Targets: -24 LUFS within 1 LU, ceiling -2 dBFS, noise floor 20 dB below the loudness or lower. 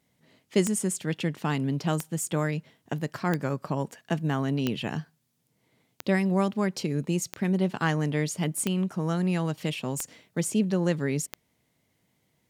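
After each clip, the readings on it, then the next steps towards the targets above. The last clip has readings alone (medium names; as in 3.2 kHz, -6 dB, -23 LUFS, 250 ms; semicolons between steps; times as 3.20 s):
clicks found 9; loudness -28.5 LUFS; peak level -11.5 dBFS; loudness target -24.0 LUFS
-> de-click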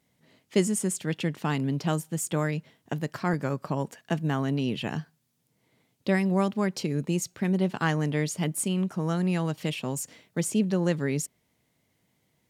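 clicks found 0; loudness -28.5 LUFS; peak level -11.5 dBFS; loudness target -24.0 LUFS
-> trim +4.5 dB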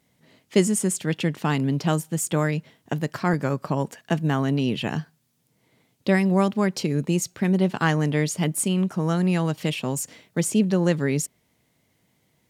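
loudness -24.0 LUFS; peak level -7.0 dBFS; noise floor -68 dBFS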